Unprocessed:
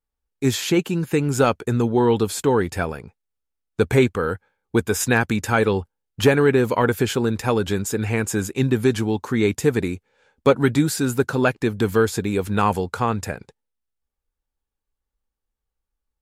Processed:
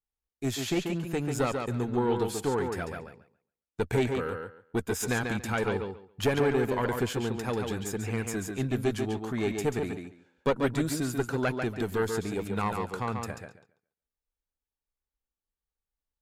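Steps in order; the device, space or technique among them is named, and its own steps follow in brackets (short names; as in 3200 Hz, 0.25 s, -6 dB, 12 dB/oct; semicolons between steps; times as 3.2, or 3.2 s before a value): rockabilly slapback (tube stage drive 9 dB, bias 0.65; tape echo 0.14 s, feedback 20%, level -4 dB, low-pass 5700 Hz); gain -6.5 dB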